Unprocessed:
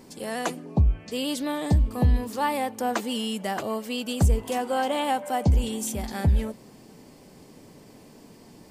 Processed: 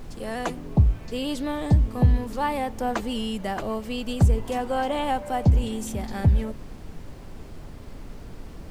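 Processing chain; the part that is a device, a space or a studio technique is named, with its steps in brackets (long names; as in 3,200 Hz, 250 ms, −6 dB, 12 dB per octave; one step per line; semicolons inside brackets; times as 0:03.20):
car interior (parametric band 120 Hz +6 dB; high-shelf EQ 4,600 Hz −8 dB; brown noise bed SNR 13 dB)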